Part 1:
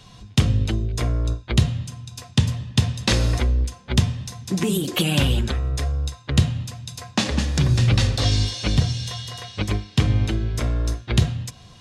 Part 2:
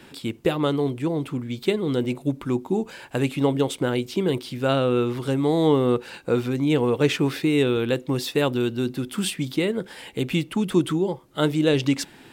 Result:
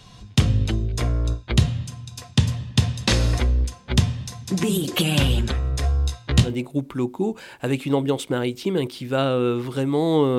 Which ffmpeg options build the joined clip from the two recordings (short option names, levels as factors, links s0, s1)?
-filter_complex "[0:a]asettb=1/sr,asplit=3[s0][s1][s2];[s0]atrim=end=5.824[s3];[s1]atrim=start=5.82:end=6.55,asetpts=PTS-STARTPTS,afade=t=in:d=0.004:c=qsin,afade=t=out:st=0.726:d=0.004:c=qsin,asplit=2[s4][s5];[s5]adelay=17,volume=0.708[s6];[s4][s6]amix=inputs=2:normalize=0,atrim=end_sample=32193[s7];[s2]atrim=start=6.546[s8];[s3][s7]acrossfade=d=0.004:c1=hsin:c2=qsin[s9];[s9][s8]acrossfade=d=0.004:c1=qsin:c2=hsin,apad=whole_dur=10.38,atrim=end=10.38,atrim=end=6.55,asetpts=PTS-STARTPTS[s10];[1:a]atrim=start=1.9:end=5.89,asetpts=PTS-STARTPTS[s11];[s10][s11]acrossfade=d=0.16:c1=tri:c2=tri"